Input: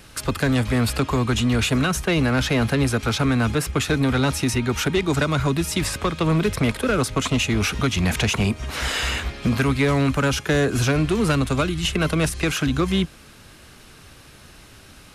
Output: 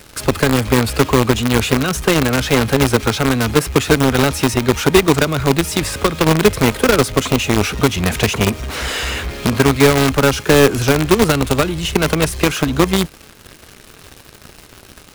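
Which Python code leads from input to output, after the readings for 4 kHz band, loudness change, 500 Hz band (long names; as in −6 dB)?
+6.0 dB, +6.0 dB, +9.0 dB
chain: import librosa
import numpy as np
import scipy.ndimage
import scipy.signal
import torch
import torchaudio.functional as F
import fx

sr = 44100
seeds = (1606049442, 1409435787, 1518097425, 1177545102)

p1 = fx.peak_eq(x, sr, hz=430.0, db=5.0, octaves=0.84)
p2 = fx.quant_companded(p1, sr, bits=2)
p3 = p1 + (p2 * 10.0 ** (-4.0 / 20.0))
y = p3 * 10.0 ** (-1.0 / 20.0)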